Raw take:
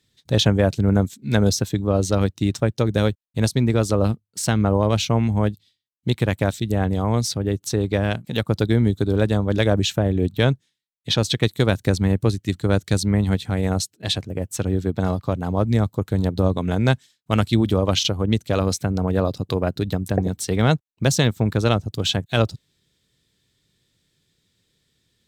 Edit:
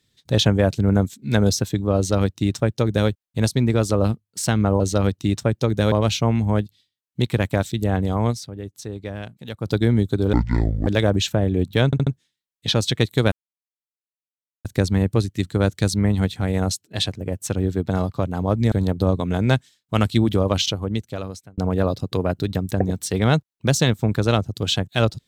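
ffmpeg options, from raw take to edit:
-filter_complex "[0:a]asplit=13[a][b][c][d][e][f][g][h][i][j][k][l][m];[a]atrim=end=4.802[n];[b]atrim=start=1.968:end=3.092[o];[c]atrim=start=4.798:end=7.54,asetpts=PTS-STARTPTS,afade=t=out:st=2.382:d=0.36:c=exp:silence=0.298538[p];[d]atrim=start=7.54:end=8.2,asetpts=PTS-STARTPTS,volume=-10.5dB[q];[e]atrim=start=8.2:end=9.214,asetpts=PTS-STARTPTS,afade=t=in:d=0.36:c=exp:silence=0.298538[r];[f]atrim=start=9.21:end=9.5,asetpts=PTS-STARTPTS,asetrate=23814,aresample=44100,atrim=end_sample=23683,asetpts=PTS-STARTPTS[s];[g]atrim=start=9.496:end=10.562[t];[h]atrim=start=10.488:end=10.562[u];[i]atrim=start=10.488:end=10.562[v];[j]atrim=start=10.488:end=11.74,asetpts=PTS-STARTPTS,afade=t=out:st=1.248:d=0.004:c=hsin,apad=pad_dur=1.33[w];[k]atrim=start=11.74:end=15.812,asetpts=PTS-STARTPTS,afade=t=in:d=0.004:c=hsin[x];[l]atrim=start=16.088:end=18.95,asetpts=PTS-STARTPTS,afade=t=out:st=1.772:d=1.09[y];[m]atrim=start=18.95,asetpts=PTS-STARTPTS,afade=t=in:d=0.004:c=hsin[z];[n][o]acrossfade=d=0.004:c1=hsin:c2=hsin[aa];[p][q][r]concat=n=3:v=0:a=1[ab];[aa][ab]acrossfade=d=0.004:c1=hsin:c2=hsin[ac];[ac][s]acrossfade=d=0.004:c1=hsin:c2=hsin[ad];[ad][t]acrossfade=d=0.004:c1=hsin:c2=hsin[ae];[ae][u]acrossfade=d=0.004:c1=hsin:c2=hsin[af];[af][v]acrossfade=d=0.004:c1=hsin:c2=hsin[ag];[w][x]concat=n=2:v=0:a=1[ah];[ag][ah]acrossfade=d=0.004:c1=hsin:c2=hsin[ai];[y][z]concat=n=2:v=0:a=1[aj];[ai][aj]acrossfade=d=0.004:c1=hsin:c2=hsin"

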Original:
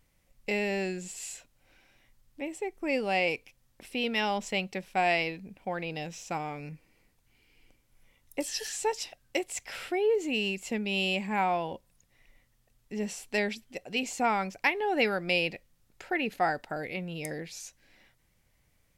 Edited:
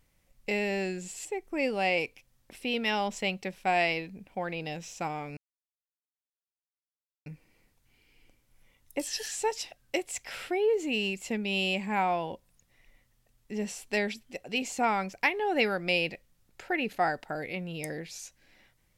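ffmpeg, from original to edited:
-filter_complex "[0:a]asplit=3[a][b][c];[a]atrim=end=1.252[d];[b]atrim=start=2.548:end=6.67,asetpts=PTS-STARTPTS,afade=t=out:st=4.118:d=0.004:c=hsin,apad=pad_dur=1.89[e];[c]atrim=start=6.67,asetpts=PTS-STARTPTS,afade=t=in:d=0.004:c=hsin[f];[e][f]concat=n=2:v=0:a=1[g];[d][g]acrossfade=d=0.004:c1=hsin:c2=hsin"

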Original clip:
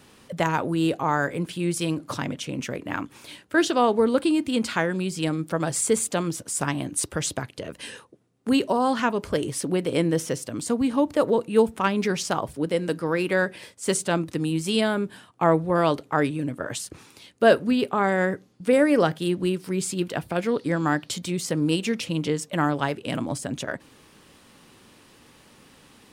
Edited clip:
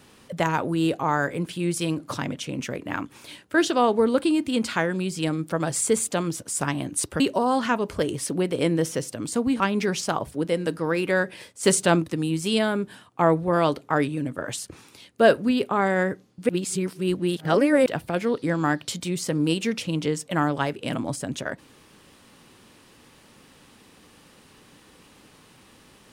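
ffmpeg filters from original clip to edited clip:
-filter_complex "[0:a]asplit=7[a][b][c][d][e][f][g];[a]atrim=end=7.202[h];[b]atrim=start=8.538:end=10.942[i];[c]atrim=start=11.818:end=13.852[j];[d]atrim=start=13.848:end=14.262,asetpts=PTS-STARTPTS,volume=4.5dB[k];[e]atrim=start=14.258:end=18.712[l];[f]atrim=start=18.708:end=20.082,asetpts=PTS-STARTPTS,areverse[m];[g]atrim=start=20.078[n];[h][i]acrossfade=d=0.004:c1=hsin:c2=hsin[o];[o][j]acrossfade=d=0.004:c1=hsin:c2=hsin[p];[p][k]acrossfade=d=0.004:c1=hsin:c2=hsin[q];[q][l]acrossfade=d=0.004:c1=hsin:c2=hsin[r];[r][m]acrossfade=d=0.004:c1=hsin:c2=hsin[s];[s][n]acrossfade=d=0.004:c1=hsin:c2=hsin"

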